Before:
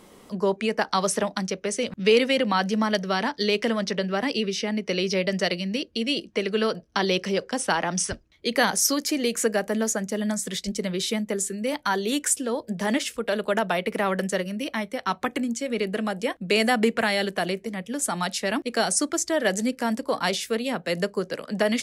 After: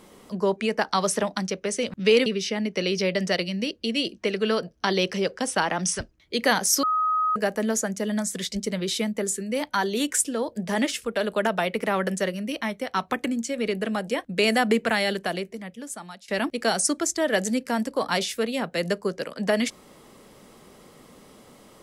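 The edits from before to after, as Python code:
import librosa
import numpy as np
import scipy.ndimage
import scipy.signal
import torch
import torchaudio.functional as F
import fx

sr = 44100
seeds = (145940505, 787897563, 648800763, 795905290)

y = fx.edit(x, sr, fx.cut(start_s=2.26, length_s=2.12),
    fx.bleep(start_s=8.95, length_s=0.53, hz=1260.0, db=-20.0),
    fx.fade_out_to(start_s=17.15, length_s=1.25, floor_db=-23.5), tone=tone)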